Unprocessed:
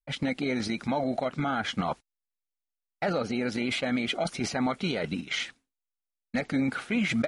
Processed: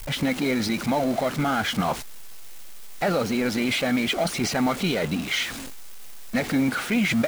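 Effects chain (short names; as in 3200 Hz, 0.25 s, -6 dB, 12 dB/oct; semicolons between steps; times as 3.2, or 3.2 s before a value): zero-crossing step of -32 dBFS; modulation noise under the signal 26 dB; gain +3 dB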